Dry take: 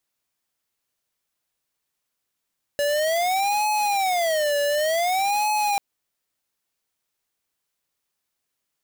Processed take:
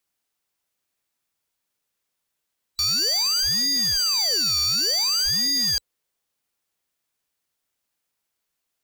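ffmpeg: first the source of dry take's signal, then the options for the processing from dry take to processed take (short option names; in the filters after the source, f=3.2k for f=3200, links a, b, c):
-f lavfi -i "aevalsrc='0.0794*(2*lt(mod((712*t-136/(2*PI*0.55)*sin(2*PI*0.55*t)),1),0.5)-1)':d=2.99:s=44100"
-af "afftfilt=real='real(if(lt(b,736),b+184*(1-2*mod(floor(b/184),2)),b),0)':imag='imag(if(lt(b,736),b+184*(1-2*mod(floor(b/184),2)),b),0)':win_size=2048:overlap=0.75,adynamicequalizer=threshold=0.00178:dfrequency=480:dqfactor=2.6:tfrequency=480:tqfactor=2.6:attack=5:release=100:ratio=0.375:range=3:mode=boostabove:tftype=bell"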